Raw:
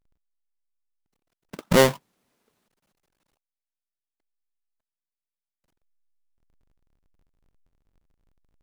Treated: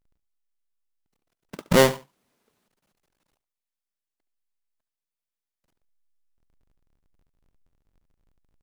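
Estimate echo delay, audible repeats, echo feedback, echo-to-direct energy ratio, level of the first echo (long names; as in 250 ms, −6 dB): 71 ms, 2, 23%, −17.0 dB, −17.0 dB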